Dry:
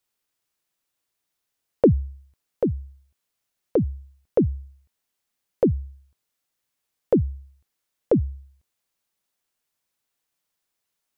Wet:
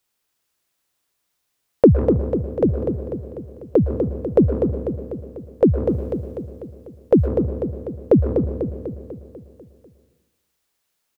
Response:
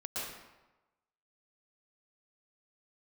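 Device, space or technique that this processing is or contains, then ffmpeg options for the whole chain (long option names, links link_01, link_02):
saturated reverb return: -filter_complex "[0:a]aecho=1:1:247|494|741|988|1235|1482|1729:0.473|0.265|0.148|0.0831|0.0465|0.0261|0.0146,asplit=2[link_01][link_02];[1:a]atrim=start_sample=2205[link_03];[link_02][link_03]afir=irnorm=-1:irlink=0,asoftclip=type=tanh:threshold=-11.5dB,volume=-10dB[link_04];[link_01][link_04]amix=inputs=2:normalize=0,asplit=3[link_05][link_06][link_07];[link_05]afade=type=out:start_time=5.87:duration=0.02[link_08];[link_06]adynamicequalizer=threshold=0.00891:dfrequency=1900:dqfactor=0.7:tfrequency=1900:tqfactor=0.7:attack=5:release=100:ratio=0.375:range=3.5:mode=boostabove:tftype=highshelf,afade=type=in:start_time=5.87:duration=0.02,afade=type=out:start_time=7.26:duration=0.02[link_09];[link_07]afade=type=in:start_time=7.26:duration=0.02[link_10];[link_08][link_09][link_10]amix=inputs=3:normalize=0,volume=3.5dB"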